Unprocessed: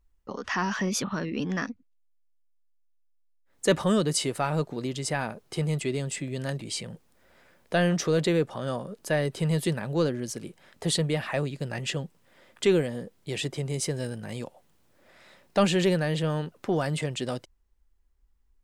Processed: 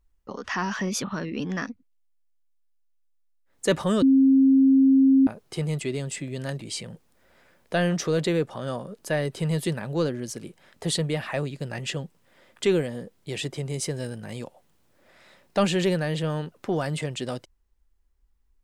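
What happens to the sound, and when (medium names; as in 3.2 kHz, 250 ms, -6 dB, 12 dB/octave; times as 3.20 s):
4.02–5.27 s: bleep 268 Hz -13.5 dBFS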